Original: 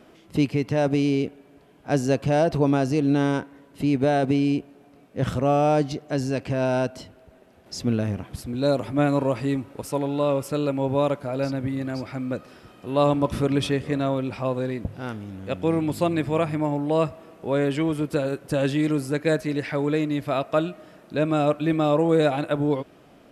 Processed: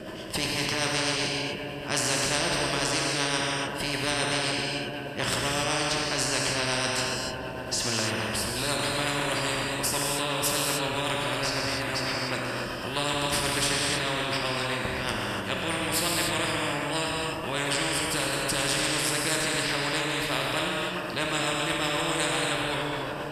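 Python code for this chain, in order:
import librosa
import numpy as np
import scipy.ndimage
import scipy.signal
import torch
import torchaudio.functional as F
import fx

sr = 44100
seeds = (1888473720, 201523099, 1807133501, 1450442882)

y = fx.ripple_eq(x, sr, per_octave=1.3, db=9)
y = fx.echo_wet_lowpass(y, sr, ms=419, feedback_pct=51, hz=3600.0, wet_db=-18.5)
y = fx.rotary(y, sr, hz=8.0)
y = fx.rev_gated(y, sr, seeds[0], gate_ms=320, shape='flat', drr_db=-1.0)
y = fx.spectral_comp(y, sr, ratio=4.0)
y = y * librosa.db_to_amplitude(-5.0)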